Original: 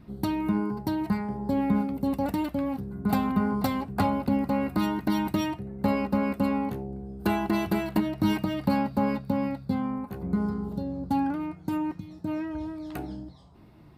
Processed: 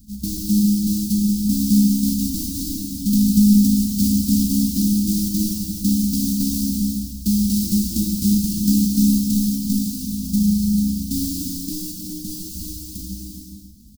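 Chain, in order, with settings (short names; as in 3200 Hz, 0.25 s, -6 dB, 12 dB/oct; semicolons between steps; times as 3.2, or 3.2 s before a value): half-waves squared off; elliptic band-stop 220–4700 Hz, stop band 50 dB; high shelf 8300 Hz +8.5 dB; comb 3.9 ms, depth 79%; non-linear reverb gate 0.46 s flat, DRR -1 dB; gain -1 dB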